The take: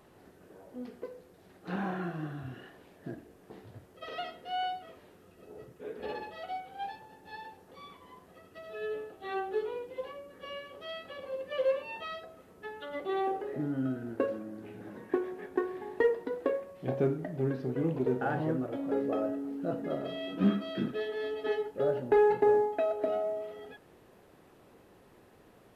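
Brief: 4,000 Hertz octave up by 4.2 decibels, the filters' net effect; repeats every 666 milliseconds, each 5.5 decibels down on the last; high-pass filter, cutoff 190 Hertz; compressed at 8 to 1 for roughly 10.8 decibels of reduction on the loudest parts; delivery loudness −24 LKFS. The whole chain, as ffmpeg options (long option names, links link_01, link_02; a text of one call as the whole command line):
ffmpeg -i in.wav -af "highpass=190,equalizer=frequency=4000:width_type=o:gain=6,acompressor=threshold=-31dB:ratio=8,aecho=1:1:666|1332|1998|2664|3330|3996|4662:0.531|0.281|0.149|0.079|0.0419|0.0222|0.0118,volume=13.5dB" out.wav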